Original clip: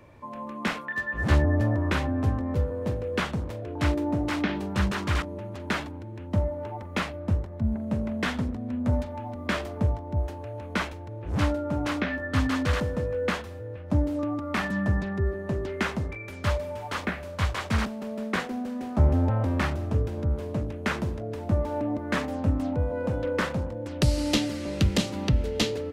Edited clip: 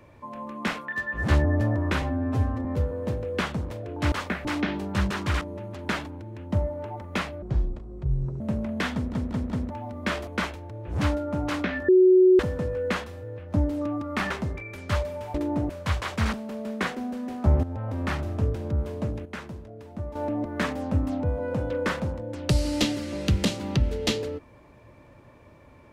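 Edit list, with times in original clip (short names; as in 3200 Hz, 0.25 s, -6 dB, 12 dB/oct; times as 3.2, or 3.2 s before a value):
2.02–2.44 stretch 1.5×
3.91–4.26 swap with 16.89–17.22
7.23–7.83 speed 61%
8.37 stutter in place 0.19 s, 4 plays
9.7–10.65 cut
12.26–12.77 bleep 370 Hz -12.5 dBFS
14.68–15.85 cut
19.16–19.8 fade in, from -13.5 dB
20.78–21.68 gain -9.5 dB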